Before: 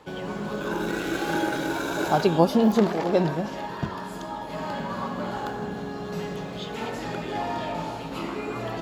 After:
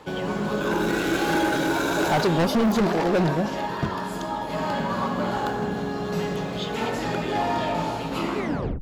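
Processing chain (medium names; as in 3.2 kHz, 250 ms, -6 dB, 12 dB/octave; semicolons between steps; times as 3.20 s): tape stop on the ending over 0.44 s; overload inside the chain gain 22.5 dB; trim +5 dB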